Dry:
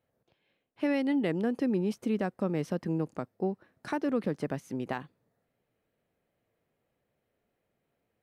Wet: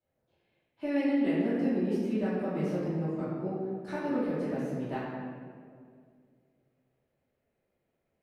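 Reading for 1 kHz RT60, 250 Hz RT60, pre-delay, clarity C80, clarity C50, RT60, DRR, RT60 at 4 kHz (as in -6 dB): 1.8 s, 2.5 s, 3 ms, 0.5 dB, -2.0 dB, 2.1 s, -13.5 dB, 1.1 s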